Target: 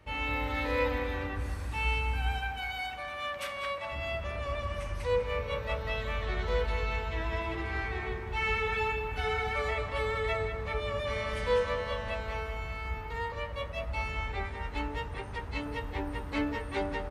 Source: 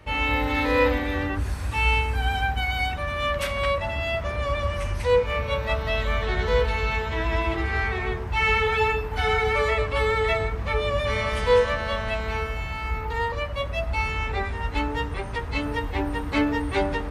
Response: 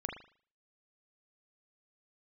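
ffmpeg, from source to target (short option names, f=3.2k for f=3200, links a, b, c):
-filter_complex "[0:a]asettb=1/sr,asplit=3[a][b][c];[a]atrim=end=2.384[d];[b]atrim=start=2.38:end=3.92,asetpts=PTS-STARTPTS,afade=t=in:d=0.004:c=qsin,afade=t=out:st=1.536:d=0.004:c=qsin,highpass=f=490:p=1[e];[c]atrim=start=3.916[f];[d][e]acrossfade=d=0.004:c1=hsin:c2=qsin[g];[g][f]acrossfade=d=0.004:c1=qsin:c2=hsin,asplit=2[h][i];[i]adelay=197,lowpass=f=3.8k:p=1,volume=-8dB,asplit=2[j][k];[k]adelay=197,lowpass=f=3.8k:p=1,volume=0.5,asplit=2[l][m];[m]adelay=197,lowpass=f=3.8k:p=1,volume=0.5,asplit=2[n][o];[o]adelay=197,lowpass=f=3.8k:p=1,volume=0.5,asplit=2[p][q];[q]adelay=197,lowpass=f=3.8k:p=1,volume=0.5,asplit=2[r][s];[s]adelay=197,lowpass=f=3.8k:p=1,volume=0.5[t];[h][j][l][n][p][r][t]amix=inputs=7:normalize=0,volume=-9dB"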